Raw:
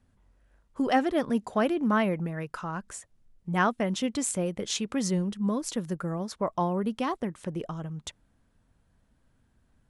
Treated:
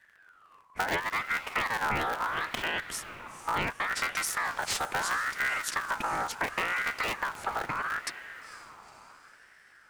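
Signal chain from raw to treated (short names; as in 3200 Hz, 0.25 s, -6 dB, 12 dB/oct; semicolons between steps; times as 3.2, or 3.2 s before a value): cycle switcher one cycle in 3, inverted; compressor 6:1, threshold -32 dBFS, peak gain reduction 13 dB; diffused feedback echo 0.467 s, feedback 52%, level -13 dB; ring modulator with a swept carrier 1400 Hz, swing 25%, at 0.73 Hz; gain +7 dB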